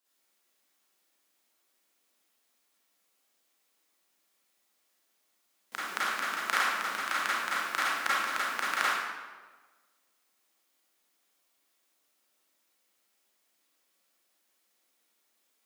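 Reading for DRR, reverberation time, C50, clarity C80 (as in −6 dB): −9.5 dB, 1.4 s, −4.0 dB, 0.0 dB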